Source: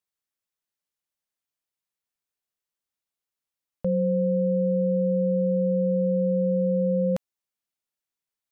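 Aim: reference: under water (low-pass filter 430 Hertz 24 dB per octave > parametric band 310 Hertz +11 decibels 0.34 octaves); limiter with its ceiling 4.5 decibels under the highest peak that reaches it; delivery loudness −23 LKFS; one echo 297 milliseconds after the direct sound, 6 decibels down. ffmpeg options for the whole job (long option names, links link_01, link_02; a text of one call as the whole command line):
ffmpeg -i in.wav -af "alimiter=limit=-21.5dB:level=0:latency=1,lowpass=frequency=430:width=0.5412,lowpass=frequency=430:width=1.3066,equalizer=frequency=310:width_type=o:width=0.34:gain=11,aecho=1:1:297:0.501,volume=4.5dB" out.wav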